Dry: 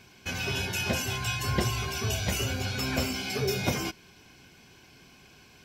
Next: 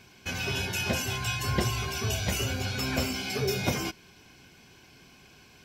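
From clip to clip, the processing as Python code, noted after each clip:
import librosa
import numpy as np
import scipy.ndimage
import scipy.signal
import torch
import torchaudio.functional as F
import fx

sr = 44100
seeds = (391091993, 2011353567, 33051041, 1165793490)

y = x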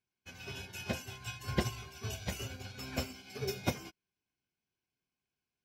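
y = fx.upward_expand(x, sr, threshold_db=-46.0, expansion=2.5)
y = y * 10.0 ** (-2.5 / 20.0)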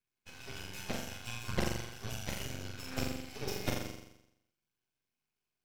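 y = fx.room_flutter(x, sr, wall_m=7.3, rt60_s=0.83)
y = np.maximum(y, 0.0)
y = y * 10.0 ** (1.5 / 20.0)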